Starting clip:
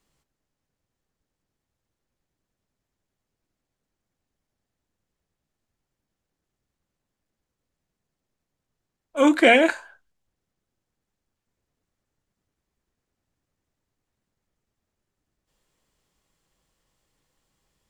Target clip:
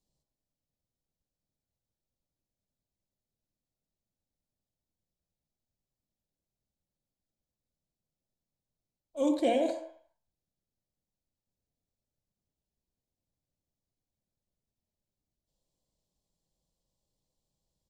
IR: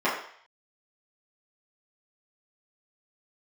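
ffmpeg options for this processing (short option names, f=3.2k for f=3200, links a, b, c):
-filter_complex "[0:a]firequalizer=gain_entry='entry(160,0);entry(380,-6);entry(580,-1);entry(1000,-10);entry(1400,-26);entry(3900,-1);entry(10000,-4)':delay=0.05:min_phase=1,asplit=2[a][b];[1:a]atrim=start_sample=2205,adelay=54[c];[b][c]afir=irnorm=-1:irlink=0,volume=-21dB[d];[a][d]amix=inputs=2:normalize=0,volume=-8dB"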